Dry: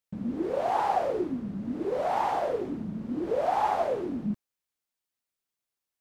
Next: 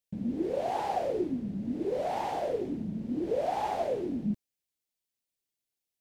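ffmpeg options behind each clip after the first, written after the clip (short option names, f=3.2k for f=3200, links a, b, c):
-af "equalizer=f=1.2k:w=1.4:g=-12.5"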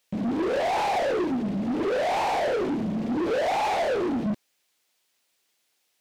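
-filter_complex "[0:a]asplit=2[a][b];[b]highpass=f=720:p=1,volume=28dB,asoftclip=type=tanh:threshold=-19dB[c];[a][c]amix=inputs=2:normalize=0,lowpass=f=4.1k:p=1,volume=-6dB"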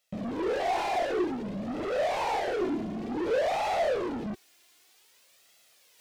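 -af "flanger=delay=1.5:depth=1.4:regen=32:speed=0.54:shape=sinusoidal,areverse,acompressor=mode=upward:threshold=-48dB:ratio=2.5,areverse"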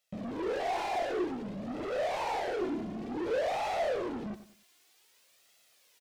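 -af "aecho=1:1:97|194|291:0.224|0.0739|0.0244,volume=-4dB"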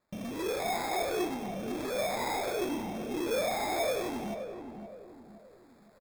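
-filter_complex "[0:a]acrusher=samples=15:mix=1:aa=0.000001,asplit=2[a][b];[b]adelay=520,lowpass=f=960:p=1,volume=-7dB,asplit=2[c][d];[d]adelay=520,lowpass=f=960:p=1,volume=0.44,asplit=2[e][f];[f]adelay=520,lowpass=f=960:p=1,volume=0.44,asplit=2[g][h];[h]adelay=520,lowpass=f=960:p=1,volume=0.44,asplit=2[i][j];[j]adelay=520,lowpass=f=960:p=1,volume=0.44[k];[a][c][e][g][i][k]amix=inputs=6:normalize=0"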